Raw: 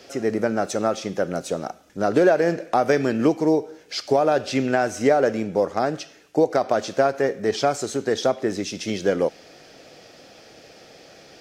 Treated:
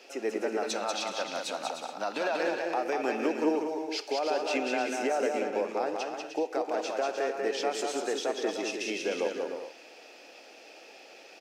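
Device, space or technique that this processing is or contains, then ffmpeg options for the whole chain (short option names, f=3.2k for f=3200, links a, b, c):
laptop speaker: -filter_complex "[0:a]asettb=1/sr,asplit=3[a][b][c];[a]atrim=end=0.634[d];[b]atrim=start=0.63:end=2.43,asetpts=PTS-STARTPTS,afade=t=in:d=0.004:c=qsin,afade=t=out:st=1.796:d=0.004:c=qsin,equalizer=f=400:t=o:w=0.67:g=-12,equalizer=f=1k:t=o:w=0.67:g=6,equalizer=f=4k:t=o:w=0.67:g=11[e];[c]atrim=start=2.426[f];[d][e]acrossfade=d=0.004:c1=hsin:c2=qsin[g];[g][f]acrossfade=d=0.004:c1=qsin:c2=hsin,highpass=f=280:w=0.5412,highpass=f=280:w=1.3066,equalizer=f=870:t=o:w=0.28:g=7,equalizer=f=2.6k:t=o:w=0.26:g=11,alimiter=limit=-14dB:level=0:latency=1:release=98,aecho=1:1:190|304|372.4|413.4|438.1:0.631|0.398|0.251|0.158|0.1,volume=-7.5dB"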